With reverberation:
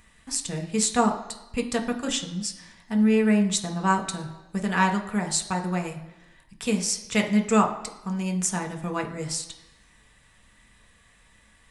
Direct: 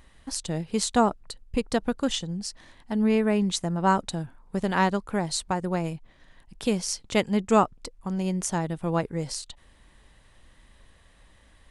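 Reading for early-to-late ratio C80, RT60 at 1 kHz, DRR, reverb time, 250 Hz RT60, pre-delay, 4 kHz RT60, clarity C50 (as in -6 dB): 13.5 dB, 1.0 s, 2.0 dB, 1.0 s, 0.85 s, 3 ms, 0.95 s, 10.5 dB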